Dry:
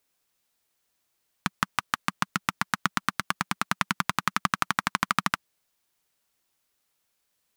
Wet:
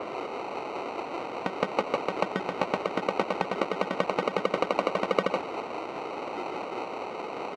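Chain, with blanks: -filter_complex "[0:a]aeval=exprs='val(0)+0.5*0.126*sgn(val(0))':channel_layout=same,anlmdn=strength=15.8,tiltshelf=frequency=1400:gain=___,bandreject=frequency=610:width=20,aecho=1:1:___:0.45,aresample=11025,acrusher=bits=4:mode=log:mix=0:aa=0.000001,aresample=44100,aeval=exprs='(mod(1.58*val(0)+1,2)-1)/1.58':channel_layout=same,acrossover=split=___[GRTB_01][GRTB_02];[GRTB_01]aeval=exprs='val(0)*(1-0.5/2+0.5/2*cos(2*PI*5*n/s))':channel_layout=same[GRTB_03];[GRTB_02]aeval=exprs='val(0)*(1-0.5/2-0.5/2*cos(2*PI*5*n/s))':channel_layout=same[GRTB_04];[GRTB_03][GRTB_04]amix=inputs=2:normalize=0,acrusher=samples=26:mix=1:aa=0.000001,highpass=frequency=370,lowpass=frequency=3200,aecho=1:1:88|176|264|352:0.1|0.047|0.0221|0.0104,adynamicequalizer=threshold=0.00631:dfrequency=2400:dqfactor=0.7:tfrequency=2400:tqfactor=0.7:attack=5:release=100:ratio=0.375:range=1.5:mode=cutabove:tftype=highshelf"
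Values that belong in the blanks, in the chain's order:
8, 2.6, 1300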